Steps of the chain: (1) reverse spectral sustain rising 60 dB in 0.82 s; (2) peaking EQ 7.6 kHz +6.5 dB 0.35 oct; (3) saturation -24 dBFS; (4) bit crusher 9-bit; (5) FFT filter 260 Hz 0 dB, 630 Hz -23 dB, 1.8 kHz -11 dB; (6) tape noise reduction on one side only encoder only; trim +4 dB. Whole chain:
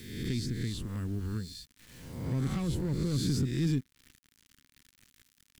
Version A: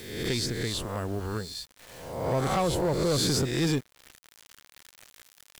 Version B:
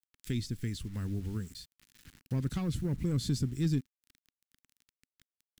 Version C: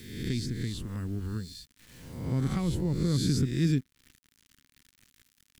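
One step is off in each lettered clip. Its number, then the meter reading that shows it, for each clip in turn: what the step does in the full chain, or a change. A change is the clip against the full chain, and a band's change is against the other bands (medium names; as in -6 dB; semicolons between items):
5, crest factor change -3.5 dB; 1, 125 Hz band +1.5 dB; 3, distortion -12 dB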